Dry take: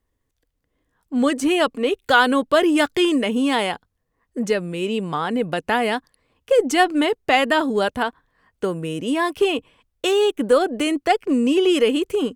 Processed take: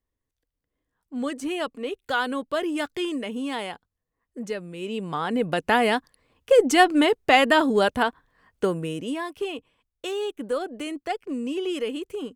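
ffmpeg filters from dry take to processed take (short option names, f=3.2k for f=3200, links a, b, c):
-af "afade=t=in:st=4.75:d=0.95:silence=0.316228,afade=t=out:st=8.64:d=0.6:silence=0.281838"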